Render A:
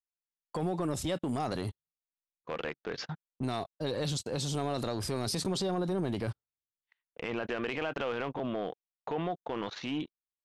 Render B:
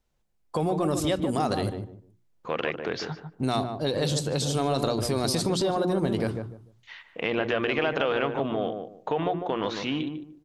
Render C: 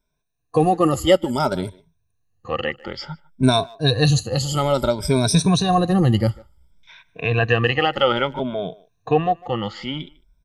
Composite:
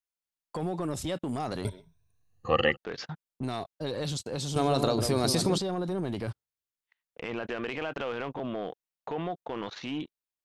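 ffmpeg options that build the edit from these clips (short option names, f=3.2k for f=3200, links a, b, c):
-filter_complex "[0:a]asplit=3[a][b][c];[a]atrim=end=1.652[d];[2:a]atrim=start=1.648:end=2.772[e];[b]atrim=start=2.768:end=4.562[f];[1:a]atrim=start=4.558:end=5.582[g];[c]atrim=start=5.578[h];[d][e]acrossfade=d=0.004:c1=hsin:c2=hsin[i];[i][f]acrossfade=d=0.004:c1=hsin:c2=hsin[j];[j][g]acrossfade=d=0.004:c1=hsin:c2=hsin[k];[k][h]acrossfade=d=0.004:c1=hsin:c2=hsin"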